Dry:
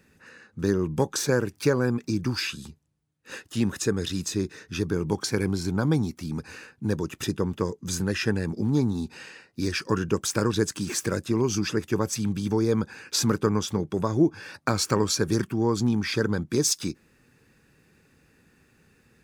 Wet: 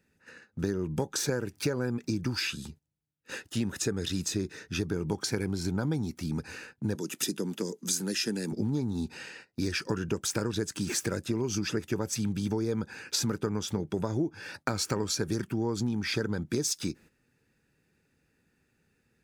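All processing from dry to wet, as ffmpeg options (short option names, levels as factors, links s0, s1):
-filter_complex "[0:a]asettb=1/sr,asplit=3[s0][s1][s2];[s0]atrim=end=6.954[s3];[s1]atrim=start=6.95:end=8.52,asetpts=PTS-STARTPTS,afade=t=in:d=0.004:c=qsin,afade=t=out:st=1.566:d=0.004:c=qsin,highpass=f=190:w=0.5412,highpass=f=190:w=1.3066,equalizer=f=11000:w=0.31:g=9,acrossover=split=390|3000[s4][s5][s6];[s5]acompressor=threshold=0.00794:ratio=3:attack=3.2:release=140:knee=2.83:detection=peak[s7];[s4][s7][s6]amix=inputs=3:normalize=0[s8];[s2]atrim=start=8.516[s9];[s3][s8]acrossfade=d=0.004:c1=hsin:c2=qsin[s10];[s10][s9]acrossfade=d=0.004:c1=qsin:c2=hsin,bandreject=f=1100:w=8.6,agate=range=0.282:threshold=0.00355:ratio=16:detection=peak,acompressor=threshold=0.0501:ratio=6"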